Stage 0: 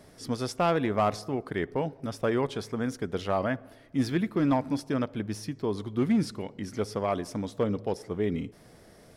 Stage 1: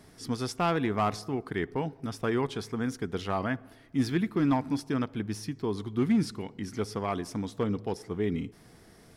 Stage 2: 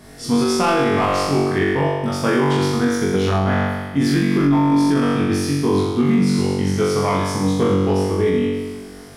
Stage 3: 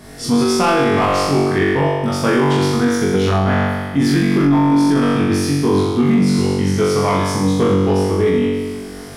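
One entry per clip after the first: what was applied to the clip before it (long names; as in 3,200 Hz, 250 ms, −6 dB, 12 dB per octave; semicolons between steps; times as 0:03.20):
parametric band 570 Hz −10.5 dB 0.36 octaves
flutter between parallel walls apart 3.6 metres, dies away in 1.3 s; brickwall limiter −17 dBFS, peak gain reduction 10 dB; level +8.5 dB
camcorder AGC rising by 5.3 dB per second; in parallel at −5 dB: soft clipping −17.5 dBFS, distortion −11 dB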